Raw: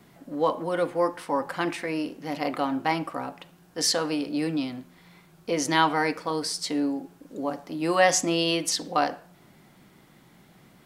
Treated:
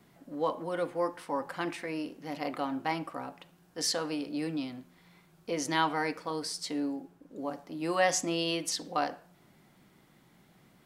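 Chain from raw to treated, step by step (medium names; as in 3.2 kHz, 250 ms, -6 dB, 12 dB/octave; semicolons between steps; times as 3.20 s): 6.96–7.76 s: tape noise reduction on one side only decoder only; trim -6.5 dB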